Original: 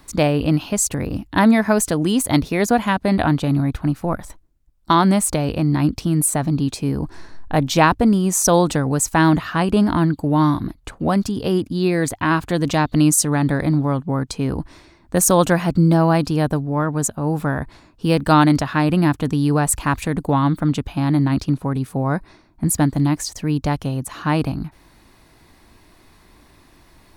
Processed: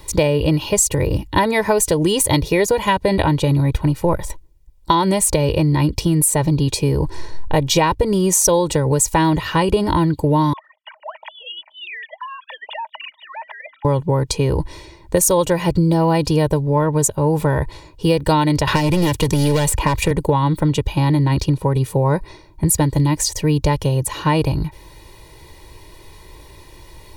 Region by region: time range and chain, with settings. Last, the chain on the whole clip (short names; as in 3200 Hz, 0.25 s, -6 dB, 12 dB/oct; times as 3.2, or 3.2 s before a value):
10.53–13.85 sine-wave speech + rippled Chebyshev high-pass 620 Hz, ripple 3 dB + compressor 3:1, threshold -37 dBFS
18.67–20.11 hard clip -16.5 dBFS + three-band squash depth 100%
whole clip: bell 1400 Hz -12 dB 0.37 oct; comb 2.1 ms, depth 84%; compressor, threshold -19 dBFS; gain +6.5 dB